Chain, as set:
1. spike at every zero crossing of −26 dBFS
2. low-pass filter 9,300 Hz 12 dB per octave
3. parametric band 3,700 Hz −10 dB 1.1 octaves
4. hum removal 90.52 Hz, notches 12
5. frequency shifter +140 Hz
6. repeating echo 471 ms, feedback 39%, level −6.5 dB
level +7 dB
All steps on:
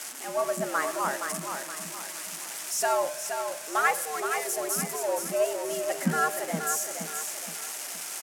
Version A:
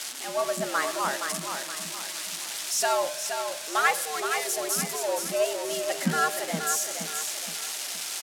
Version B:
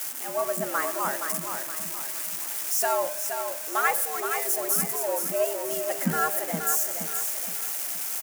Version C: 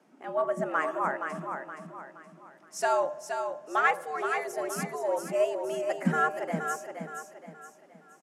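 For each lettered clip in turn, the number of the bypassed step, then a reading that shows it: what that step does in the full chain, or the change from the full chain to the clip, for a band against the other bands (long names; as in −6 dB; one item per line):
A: 3, 4 kHz band +7.0 dB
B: 2, 8 kHz band +2.5 dB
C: 1, 8 kHz band −14.5 dB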